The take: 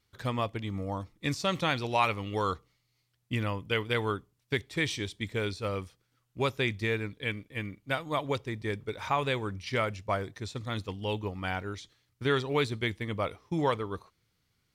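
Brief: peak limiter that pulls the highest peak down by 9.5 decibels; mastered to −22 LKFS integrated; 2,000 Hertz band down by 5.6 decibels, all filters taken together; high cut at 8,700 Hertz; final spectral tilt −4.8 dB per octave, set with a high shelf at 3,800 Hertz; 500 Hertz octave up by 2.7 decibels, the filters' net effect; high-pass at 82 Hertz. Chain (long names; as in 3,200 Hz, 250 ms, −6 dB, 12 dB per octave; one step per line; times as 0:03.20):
high-pass filter 82 Hz
low-pass filter 8,700 Hz
parametric band 500 Hz +3.5 dB
parametric band 2,000 Hz −9 dB
high-shelf EQ 3,800 Hz +6 dB
level +12.5 dB
brickwall limiter −9.5 dBFS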